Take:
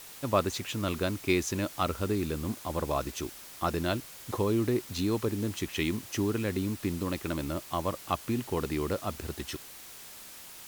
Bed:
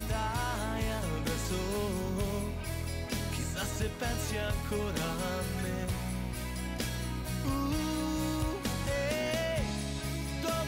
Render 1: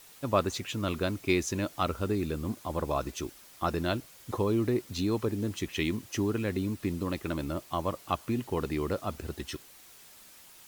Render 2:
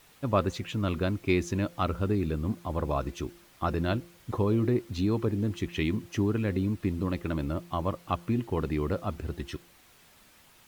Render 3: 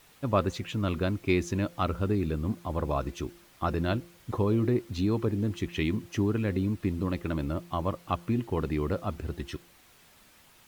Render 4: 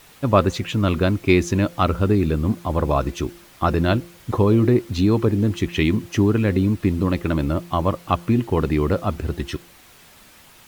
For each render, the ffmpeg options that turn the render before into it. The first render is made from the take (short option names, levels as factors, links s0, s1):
-af "afftdn=nr=7:nf=-47"
-af "bass=f=250:g=5,treble=f=4000:g=-8,bandreject=f=172.8:t=h:w=4,bandreject=f=345.6:t=h:w=4,bandreject=f=518.4:t=h:w=4"
-af anull
-af "volume=2.99"